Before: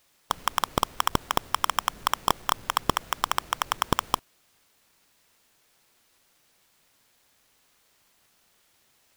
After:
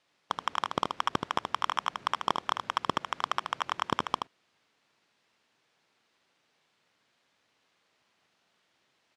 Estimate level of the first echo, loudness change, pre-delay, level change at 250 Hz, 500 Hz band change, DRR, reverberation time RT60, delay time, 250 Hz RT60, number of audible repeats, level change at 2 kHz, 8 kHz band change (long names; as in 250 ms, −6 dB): −6.0 dB, −4.5 dB, no reverb audible, −4.0 dB, −3.5 dB, no reverb audible, no reverb audible, 77 ms, no reverb audible, 1, −3.5 dB, −14.0 dB